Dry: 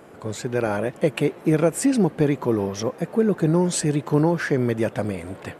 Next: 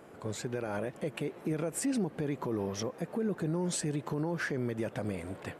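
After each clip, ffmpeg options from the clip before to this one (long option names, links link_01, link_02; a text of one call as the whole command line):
ffmpeg -i in.wav -af "alimiter=limit=-17.5dB:level=0:latency=1:release=99,volume=-6.5dB" out.wav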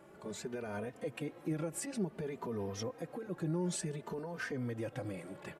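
ffmpeg -i in.wav -filter_complex "[0:a]asplit=2[link_01][link_02];[link_02]adelay=3.1,afreqshift=0.56[link_03];[link_01][link_03]amix=inputs=2:normalize=1,volume=-2dB" out.wav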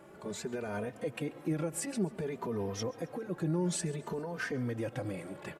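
ffmpeg -i in.wav -af "aecho=1:1:136|272|408:0.0794|0.0389|0.0191,volume=3.5dB" out.wav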